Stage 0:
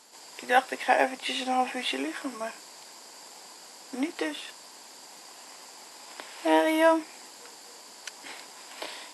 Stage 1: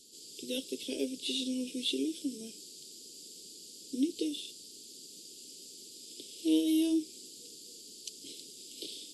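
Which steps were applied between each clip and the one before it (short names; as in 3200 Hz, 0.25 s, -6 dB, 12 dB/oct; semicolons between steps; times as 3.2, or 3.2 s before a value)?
elliptic band-stop 410–3300 Hz, stop band 40 dB; low shelf 110 Hz +8.5 dB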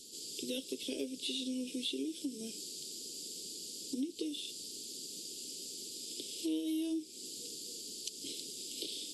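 compressor 3:1, threshold -43 dBFS, peak gain reduction 14.5 dB; gain +5 dB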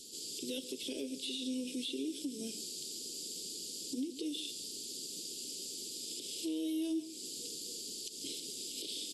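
limiter -31.5 dBFS, peak gain reduction 8.5 dB; echo 0.139 s -14.5 dB; gain +1.5 dB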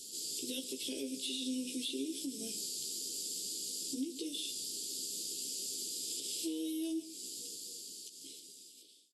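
ending faded out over 2.80 s; high shelf 5600 Hz +8 dB; doubler 15 ms -5.5 dB; gain -2.5 dB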